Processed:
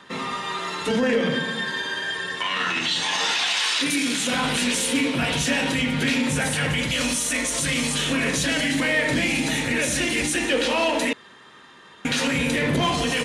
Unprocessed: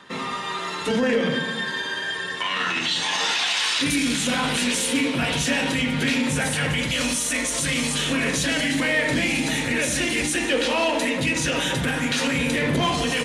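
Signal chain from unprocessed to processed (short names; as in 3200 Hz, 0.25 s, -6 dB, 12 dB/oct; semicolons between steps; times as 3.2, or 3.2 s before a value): 3.59–4.33 HPF 230 Hz 12 dB/oct; 11.13–12.05 room tone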